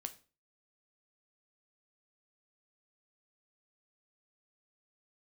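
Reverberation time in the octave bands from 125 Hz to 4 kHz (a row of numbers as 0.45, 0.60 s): 0.40, 0.45, 0.35, 0.35, 0.30, 0.30 s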